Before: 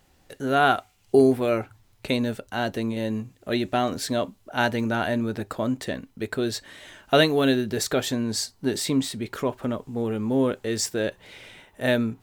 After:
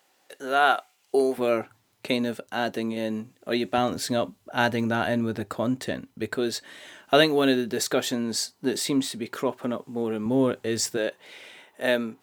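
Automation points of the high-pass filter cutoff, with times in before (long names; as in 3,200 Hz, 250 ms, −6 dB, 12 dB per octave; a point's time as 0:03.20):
470 Hz
from 0:01.38 190 Hz
from 0:03.78 80 Hz
from 0:06.36 190 Hz
from 0:10.26 89 Hz
from 0:10.97 300 Hz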